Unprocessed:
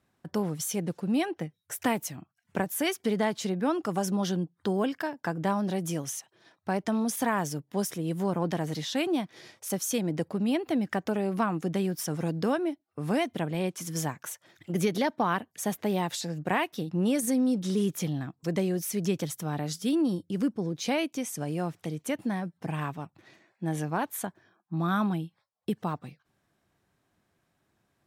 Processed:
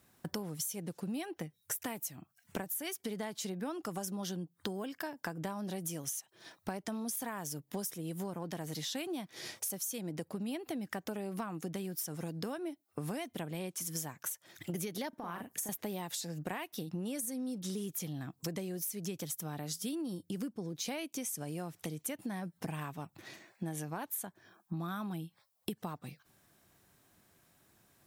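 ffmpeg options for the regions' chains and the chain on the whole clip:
-filter_complex "[0:a]asettb=1/sr,asplit=3[s0][s1][s2];[s0]atrim=end=15.094[s3];[s1]atrim=start=15.09:end=15.69,asetpts=PTS-STARTPTS,afade=t=in:d=0.004:c=qsin,afade=t=out:st=0.596:d=0.004:c=qsin,equalizer=f=3900:t=o:w=1:g=-6.5,acompressor=threshold=0.02:ratio=6:attack=3.2:release=140:knee=1:detection=peak,asplit=2[s4][s5];[s5]adelay=40,volume=0.531[s6];[s4][s6]amix=inputs=2:normalize=0,atrim=end_sample=26460[s7];[s2]atrim=start=15.686[s8];[s3][s7]acrossfade=d=0.004:c1=hsin:c2=qsin[s9];[s9][s8]acrossfade=d=0.004:c1=qsin:c2=hsin,aemphasis=mode=production:type=50kf,acompressor=threshold=0.01:ratio=10,volume=1.58"

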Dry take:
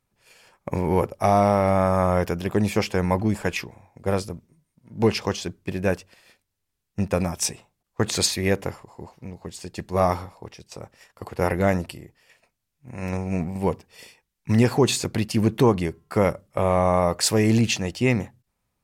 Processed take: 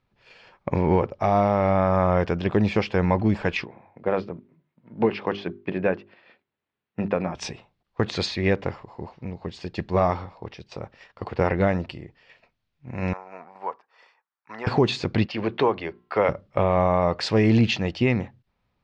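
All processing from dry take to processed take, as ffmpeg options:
-filter_complex "[0:a]asettb=1/sr,asplit=3[s0][s1][s2];[s0]atrim=end=3.654[s3];[s1]atrim=start=3.65:end=7.35,asetpts=PTS-STARTPTS,afade=t=in:d=0.004:c=qsin,afade=t=out:st=3.696:d=0.004:c=qsin,highpass=180,lowpass=2600,bandreject=f=50:t=h:w=6,bandreject=f=100:t=h:w=6,bandreject=f=150:t=h:w=6,bandreject=f=200:t=h:w=6,bandreject=f=250:t=h:w=6,bandreject=f=300:t=h:w=6,bandreject=f=350:t=h:w=6,bandreject=f=400:t=h:w=6[s4];[s2]atrim=start=7.346[s5];[s3][s4]acrossfade=d=0.004:c1=hsin:c2=qsin[s6];[s6][s5]acrossfade=d=0.004:c1=qsin:c2=hsin,asettb=1/sr,asplit=3[s7][s8][s9];[s7]atrim=end=13.134[s10];[s8]atrim=start=13.13:end=14.67,asetpts=PTS-STARTPTS,afade=t=in:d=0.004:c=qsin,afade=t=out:st=1.536:d=0.004:c=qsin,highpass=1200,highshelf=f=1800:t=q:w=1.5:g=-13.5[s11];[s9]atrim=start=14.666[s12];[s10][s11]acrossfade=d=0.004:c1=hsin:c2=qsin[s13];[s13][s12]acrossfade=d=0.004:c1=qsin:c2=hsin,asettb=1/sr,asplit=3[s14][s15][s16];[s14]atrim=end=15.264[s17];[s15]atrim=start=15.26:end=16.29,asetpts=PTS-STARTPTS,afade=t=in:d=0.004:c=qsin,afade=t=out:st=1.026:d=0.004:c=qsin,acrossover=split=390 5100:gain=0.178 1 0.0708[s18][s19][s20];[s18][s19][s20]amix=inputs=3:normalize=0,bandreject=f=60:t=h:w=6,bandreject=f=120:t=h:w=6,bandreject=f=180:t=h:w=6,bandreject=f=240:t=h:w=6,bandreject=f=300:t=h:w=6,bandreject=f=360:t=h:w=6[s21];[s16]atrim=start=16.286[s22];[s17][s21]acrossfade=d=0.004:c1=hsin:c2=qsin[s23];[s23][s22]acrossfade=d=0.004:c1=qsin:c2=hsin,alimiter=limit=0.224:level=0:latency=1:release=424,lowpass=f=4300:w=0.5412,lowpass=f=4300:w=1.3066,volume=1.5"

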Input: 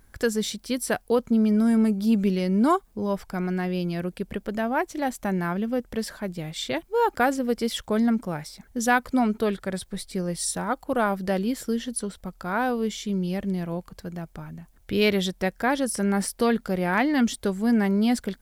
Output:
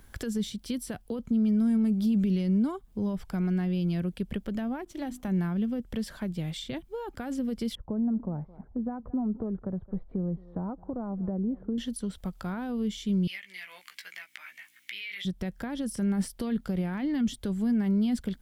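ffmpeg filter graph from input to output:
-filter_complex "[0:a]asettb=1/sr,asplit=3[s0][s1][s2];[s0]atrim=end=4.804[s3];[s1]atrim=start=4.8:end=5.28,asetpts=PTS-STARTPTS,afade=t=in:d=0.004:c=qsin,afade=t=out:st=0.476:d=0.004:c=qsin,bandreject=f=50:t=h:w=6,bandreject=f=100:t=h:w=6,bandreject=f=150:t=h:w=6,bandreject=f=200:t=h:w=6,bandreject=f=250:t=h:w=6,bandreject=f=300:t=h:w=6,bandreject=f=350:t=h:w=6,aeval=exprs='sgn(val(0))*max(abs(val(0))-0.00188,0)':c=same[s4];[s2]atrim=start=5.276[s5];[s3][s4]acrossfade=d=0.004:c1=hsin:c2=qsin[s6];[s6][s5]acrossfade=d=0.004:c1=qsin:c2=hsin,asettb=1/sr,asplit=3[s7][s8][s9];[s7]atrim=end=7.754[s10];[s8]atrim=start=7.75:end=11.78,asetpts=PTS-STARTPTS,afade=t=in:d=0.004:c=qsin,afade=t=out:st=4.026:d=0.004:c=qsin,acompressor=threshold=0.0562:ratio=2.5:attack=3.2:release=140:knee=1:detection=peak,lowpass=f=1000:w=0.5412,lowpass=f=1000:w=1.3066,aecho=1:1:215:0.0668,atrim=end_sample=177723[s11];[s9]atrim=start=11.776[s12];[s10][s11]acrossfade=d=0.004:c1=hsin:c2=qsin[s13];[s13][s12]acrossfade=d=0.004:c1=qsin:c2=hsin,asettb=1/sr,asplit=3[s14][s15][s16];[s14]atrim=end=13.274[s17];[s15]atrim=start=13.27:end=15.25,asetpts=PTS-STARTPTS,afade=t=in:d=0.004:c=qsin,afade=t=out:st=1.976:d=0.004:c=qsin,aeval=exprs='val(0)+0.00708*(sin(2*PI*60*n/s)+sin(2*PI*2*60*n/s)/2+sin(2*PI*3*60*n/s)/3+sin(2*PI*4*60*n/s)/4+sin(2*PI*5*60*n/s)/5)':c=same,highpass=f=2100:t=q:w=5.9,asplit=2[s18][s19];[s19]adelay=16,volume=0.668[s20];[s18][s20]amix=inputs=2:normalize=0,atrim=end_sample=87318[s21];[s16]atrim=start=15.246[s22];[s17][s21]acrossfade=d=0.004:c1=hsin:c2=qsin[s23];[s23][s22]acrossfade=d=0.004:c1=qsin:c2=hsin,alimiter=limit=0.126:level=0:latency=1:release=27,equalizer=f=3200:t=o:w=0.48:g=6,acrossover=split=250[s24][s25];[s25]acompressor=threshold=0.00708:ratio=4[s26];[s24][s26]amix=inputs=2:normalize=0,volume=1.33"

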